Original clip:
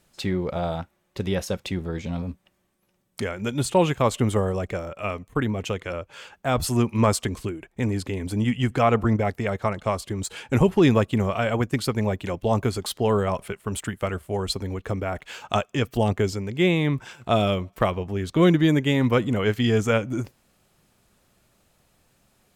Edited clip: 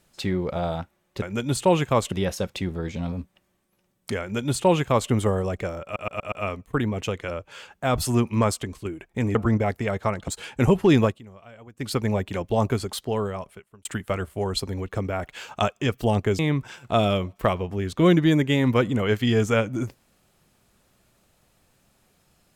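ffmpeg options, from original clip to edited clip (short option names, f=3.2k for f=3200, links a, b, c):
-filter_complex "[0:a]asplit=14[a][b][c][d][e][f][g][h][i][j][k][l][m][n];[a]atrim=end=1.222[o];[b]atrim=start=3.308:end=4.212[p];[c]atrim=start=1.218:end=5.062[q];[d]atrim=start=4.938:end=5.062[r];[e]atrim=start=4.938:end=5.062[s];[f]atrim=start=4.938:end=5.062[t];[g]atrim=start=4.938:end=7.47,asetpts=PTS-STARTPTS,afade=t=out:st=1.922:d=0.61:silence=0.398107[u];[h]atrim=start=7.47:end=7.972,asetpts=PTS-STARTPTS,afade=t=in:d=0.004:c=hsin:silence=0.398107[v];[i]atrim=start=8.938:end=9.872[w];[j]atrim=start=10.208:end=11.14,asetpts=PTS-STARTPTS,afade=t=out:st=0.752:d=0.18:silence=0.0749894[x];[k]atrim=start=11.14:end=11.68,asetpts=PTS-STARTPTS,volume=-22.5dB[y];[l]atrim=start=11.68:end=13.78,asetpts=PTS-STARTPTS,afade=t=in:d=0.18:silence=0.0749894,afade=t=out:st=0.95:d=1.15[z];[m]atrim=start=13.78:end=16.322,asetpts=PTS-STARTPTS,afade=t=in:d=0.004:c=hsin[aa];[n]atrim=start=16.758[ab];[o][p]acrossfade=d=0.004:c1=hsin:c2=hsin[ac];[ac][q]acrossfade=d=0.004:c1=hsin:c2=hsin[ad];[ad][r]acrossfade=d=0.004:c1=hsin:c2=hsin[ae];[ae][s]acrossfade=d=0.004:c1=hsin:c2=hsin[af];[af][t]acrossfade=d=0.004:c1=hsin:c2=hsin[ag];[u][v]concat=n=2:v=0:a=1[ah];[ag][ah]acrossfade=d=0.004:c1=hsin:c2=hsin[ai];[ai][w]acrossfade=d=0.004:c1=hsin:c2=hsin[aj];[x][y][z][aa]concat=n=4:v=0:a=1[ak];[aj][ak]acrossfade=d=0.004:c1=hsin:c2=hsin[al];[al][ab]acrossfade=d=0.004:c1=hsin:c2=hsin"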